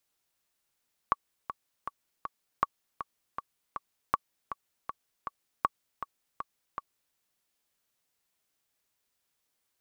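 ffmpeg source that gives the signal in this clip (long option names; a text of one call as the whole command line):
ffmpeg -f lavfi -i "aevalsrc='pow(10,(-10.5-11*gte(mod(t,4*60/159),60/159))/20)*sin(2*PI*1130*mod(t,60/159))*exp(-6.91*mod(t,60/159)/0.03)':duration=6.03:sample_rate=44100" out.wav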